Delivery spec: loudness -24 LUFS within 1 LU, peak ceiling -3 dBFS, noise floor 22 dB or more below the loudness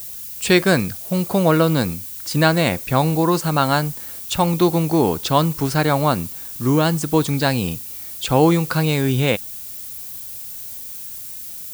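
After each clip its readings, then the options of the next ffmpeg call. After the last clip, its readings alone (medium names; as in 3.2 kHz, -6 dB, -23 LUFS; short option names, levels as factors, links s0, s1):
noise floor -33 dBFS; noise floor target -42 dBFS; loudness -19.5 LUFS; peak level -1.0 dBFS; loudness target -24.0 LUFS
-> -af "afftdn=nr=9:nf=-33"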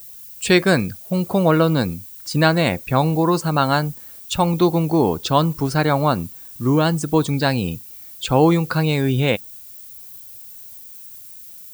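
noise floor -40 dBFS; noise floor target -41 dBFS
-> -af "afftdn=nr=6:nf=-40"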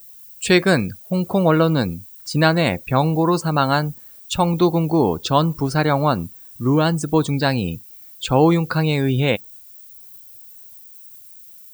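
noise floor -43 dBFS; loudness -19.0 LUFS; peak level -1.5 dBFS; loudness target -24.0 LUFS
-> -af "volume=0.562"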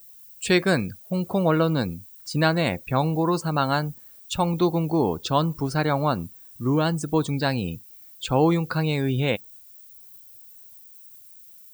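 loudness -24.0 LUFS; peak level -6.5 dBFS; noise floor -48 dBFS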